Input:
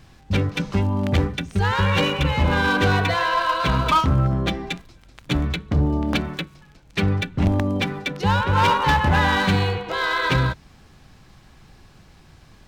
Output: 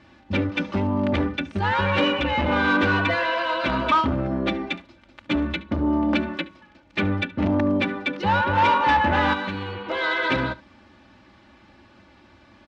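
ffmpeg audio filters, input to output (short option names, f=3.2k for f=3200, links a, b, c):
-filter_complex "[0:a]aecho=1:1:3.4:0.85,asettb=1/sr,asplit=3[a][b][c];[a]atrim=end=9.334[d];[b]atrim=start=9.33:end=9.86,asetpts=PTS-STARTPTS,afade=t=in:d=0.004:c=qsin,afade=t=out:st=0.526:d=0.004:c=qsin,acompressor=threshold=-25dB:ratio=6[e];[c]atrim=start=9.856[f];[d][e]acrossfade=d=0.004:c1=hsin:c2=qsin[g];[g][f]acrossfade=d=0.004:c1=qsin:c2=hsin,asoftclip=type=tanh:threshold=-12.5dB,highpass=120,lowpass=3.1k,asplit=2[h][i];[i]aecho=0:1:72:0.0944[j];[h][j]amix=inputs=2:normalize=0"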